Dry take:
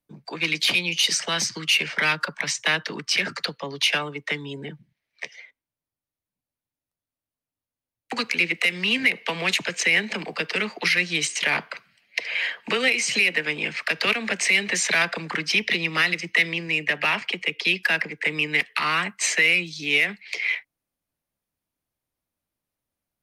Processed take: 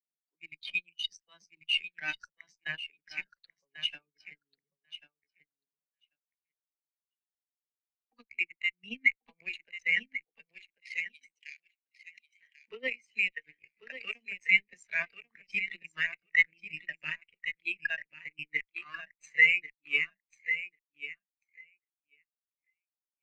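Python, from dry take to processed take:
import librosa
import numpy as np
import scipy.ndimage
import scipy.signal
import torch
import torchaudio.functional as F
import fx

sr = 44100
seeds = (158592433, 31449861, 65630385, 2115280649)

y = fx.cheby_harmonics(x, sr, harmonics=(2, 3), levels_db=(-20, -10), full_scale_db=-7.5)
y = fx.bessel_highpass(y, sr, hz=2500.0, order=4, at=(10.46, 12.39), fade=0.02)
y = 10.0 ** (-17.0 / 20.0) * np.tanh(y / 10.0 ** (-17.0 / 20.0))
y = fx.echo_feedback(y, sr, ms=1091, feedback_pct=29, wet_db=-5)
y = fx.spectral_expand(y, sr, expansion=2.5)
y = y * librosa.db_to_amplitude(3.0)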